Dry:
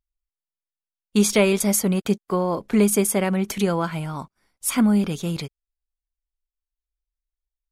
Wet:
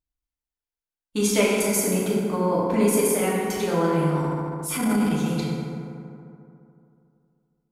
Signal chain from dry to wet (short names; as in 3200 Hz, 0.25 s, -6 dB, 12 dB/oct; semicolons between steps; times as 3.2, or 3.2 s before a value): FDN reverb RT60 2.7 s, high-frequency decay 0.4×, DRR -7 dB; 4.16–5.12 transient shaper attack -8 dB, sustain +4 dB; gain -7 dB